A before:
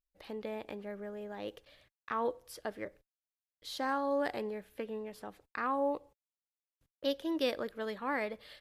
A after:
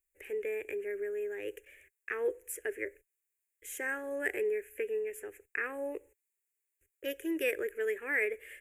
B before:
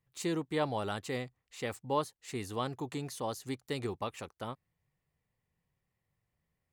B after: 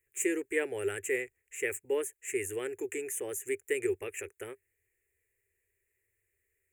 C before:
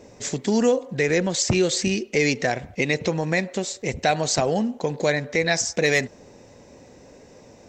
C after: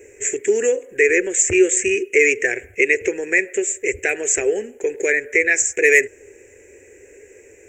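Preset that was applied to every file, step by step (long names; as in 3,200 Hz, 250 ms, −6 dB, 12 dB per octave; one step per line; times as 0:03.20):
drawn EQ curve 100 Hz 0 dB, 150 Hz −26 dB, 260 Hz −9 dB, 400 Hz +14 dB, 630 Hz −8 dB, 1,100 Hz −14 dB, 1,700 Hz +11 dB, 2,500 Hz +12 dB, 4,300 Hz −27 dB, 7,100 Hz +14 dB
level −2.5 dB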